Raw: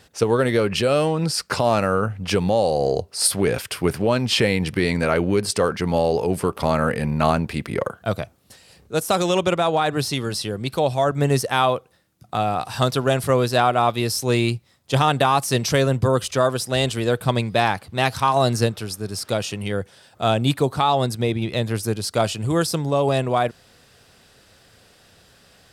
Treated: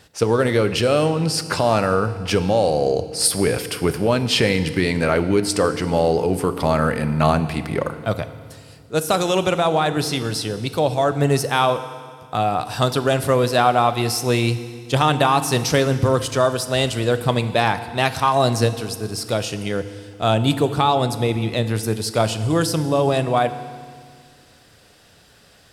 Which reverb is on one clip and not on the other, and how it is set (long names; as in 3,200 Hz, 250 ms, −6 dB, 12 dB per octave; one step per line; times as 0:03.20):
feedback delay network reverb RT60 1.9 s, low-frequency decay 1.3×, high-frequency decay 1×, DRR 10.5 dB
level +1 dB